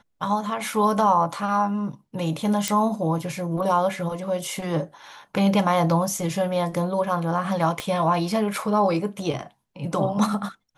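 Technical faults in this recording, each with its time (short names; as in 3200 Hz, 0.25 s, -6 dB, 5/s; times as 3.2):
2.68 pop -8 dBFS
7.8 pop -13 dBFS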